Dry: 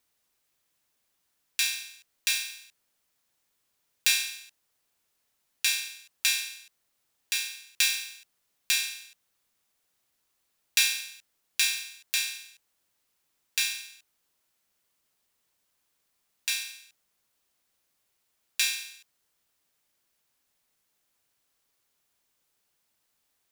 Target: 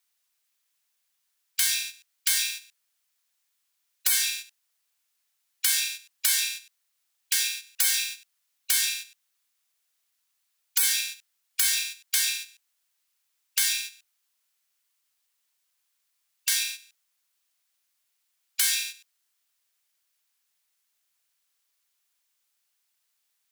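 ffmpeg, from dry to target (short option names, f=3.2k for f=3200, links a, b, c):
-af "agate=range=-9dB:threshold=-43dB:ratio=16:detection=peak,afftfilt=real='re*lt(hypot(re,im),0.0794)':imag='im*lt(hypot(re,im),0.0794)':win_size=1024:overlap=0.75,tiltshelf=f=690:g=-9.5"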